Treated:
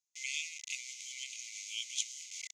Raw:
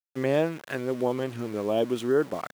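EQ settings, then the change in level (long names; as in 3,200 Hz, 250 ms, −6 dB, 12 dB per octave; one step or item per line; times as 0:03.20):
linear-phase brick-wall high-pass 2,000 Hz
low-pass with resonance 6,600 Hz, resonance Q 6.9
+1.0 dB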